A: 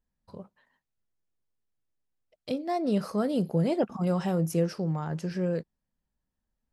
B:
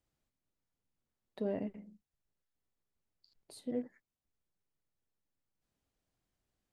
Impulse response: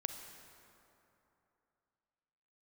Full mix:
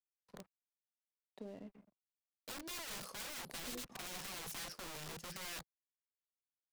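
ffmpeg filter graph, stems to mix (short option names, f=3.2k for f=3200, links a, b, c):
-filter_complex "[0:a]highshelf=f=6.4k:g=4,bandreject=f=50:t=h:w=6,bandreject=f=100:t=h:w=6,aeval=exprs='(mod(33.5*val(0)+1,2)-1)/33.5':c=same,volume=-7dB[a];[1:a]volume=-5.5dB[b];[a][b]amix=inputs=2:normalize=0,aeval=exprs='sgn(val(0))*max(abs(val(0))-0.00112,0)':c=same,acrossover=split=130|3000[c][d][e];[d]acompressor=threshold=-49dB:ratio=3[f];[c][f][e]amix=inputs=3:normalize=0,equalizer=f=83:w=2.6:g=-12"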